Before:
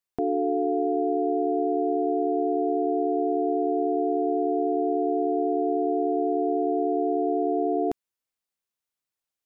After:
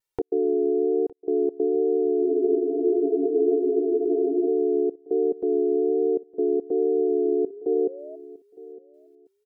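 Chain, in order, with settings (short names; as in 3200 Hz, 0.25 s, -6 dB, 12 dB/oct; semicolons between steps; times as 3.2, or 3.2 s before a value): comb 2.2 ms, depth 91%; vibrato 1.2 Hz 35 cents; step gate "xx.xxxxxxx.." 141 bpm -60 dB; painted sound rise, 7.24–8.16, 320–650 Hz -40 dBFS; feedback echo 0.91 s, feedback 25%, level -20 dB; spectral freeze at 2.26, 2.20 s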